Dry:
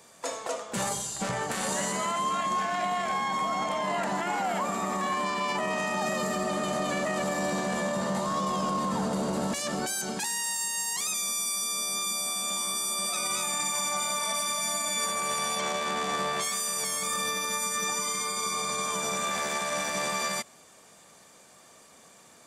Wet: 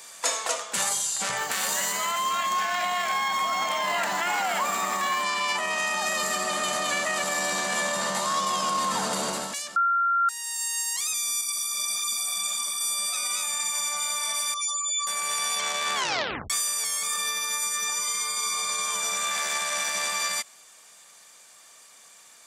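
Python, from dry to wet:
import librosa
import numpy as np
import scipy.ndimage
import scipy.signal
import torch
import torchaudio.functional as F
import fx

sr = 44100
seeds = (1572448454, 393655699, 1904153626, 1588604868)

y = fx.resample_linear(x, sr, factor=2, at=(1.37, 5.23))
y = fx.ensemble(y, sr, at=(11.41, 12.81))
y = fx.spec_expand(y, sr, power=3.6, at=(14.54, 15.07))
y = fx.edit(y, sr, fx.bleep(start_s=9.76, length_s=0.53, hz=1380.0, db=-8.0),
    fx.tape_stop(start_s=15.95, length_s=0.55), tone=tone)
y = scipy.signal.sosfilt(scipy.signal.butter(2, 47.0, 'highpass', fs=sr, output='sos'), y)
y = fx.tilt_shelf(y, sr, db=-10.0, hz=710.0)
y = fx.rider(y, sr, range_db=10, speed_s=0.5)
y = F.gain(torch.from_numpy(y), -7.5).numpy()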